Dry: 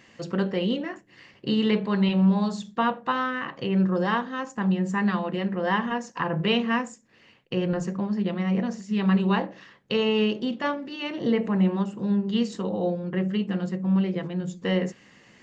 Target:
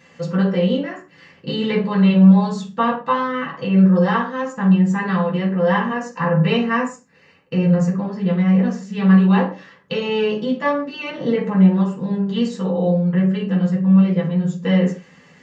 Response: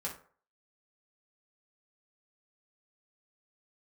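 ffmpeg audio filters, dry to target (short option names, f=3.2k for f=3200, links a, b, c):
-filter_complex "[0:a]asettb=1/sr,asplit=3[a][b][c];[a]atrim=end=5.844[d];[b]atrim=start=5.84:end=8.02,asetpts=PTS-STARTPTS,afade=t=in:d=0.004:c=qsin,afade=t=out:st=2.176:d=0.004:c=qsin,bandreject=f=3.3k:w=6.2[e];[c]atrim=start=8.016[f];[d][e]acrossfade=d=0.004:c1=hsin:c2=qsin[g];[g][f]acrossfade=d=0.004:c1=qsin:c2=hsin[h];[1:a]atrim=start_sample=2205,afade=t=out:st=0.2:d=0.01,atrim=end_sample=9261[i];[h][i]afir=irnorm=-1:irlink=0,volume=4dB"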